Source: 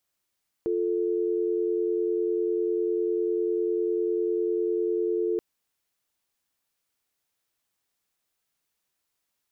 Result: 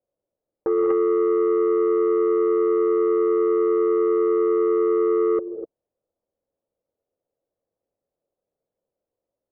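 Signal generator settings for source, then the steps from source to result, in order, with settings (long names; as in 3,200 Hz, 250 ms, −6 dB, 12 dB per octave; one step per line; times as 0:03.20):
call progress tone dial tone, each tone −26 dBFS 4.73 s
low-pass with resonance 540 Hz, resonance Q 4.9
reverb whose tail is shaped and stops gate 270 ms rising, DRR 5 dB
saturating transformer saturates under 550 Hz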